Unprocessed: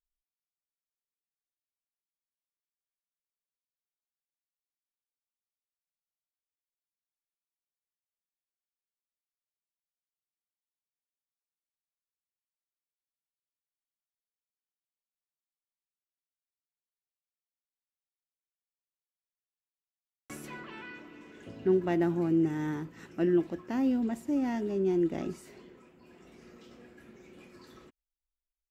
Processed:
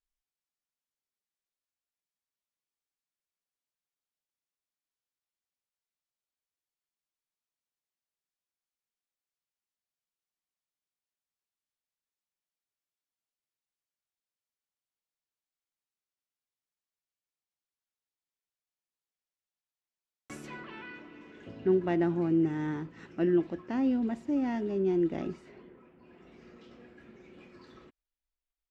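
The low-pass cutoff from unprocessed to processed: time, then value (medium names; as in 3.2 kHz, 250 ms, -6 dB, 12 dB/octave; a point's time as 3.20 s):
20.32 s 8.3 kHz
20.73 s 4.6 kHz
25.20 s 4.6 kHz
25.74 s 1.9 kHz
26.43 s 4.3 kHz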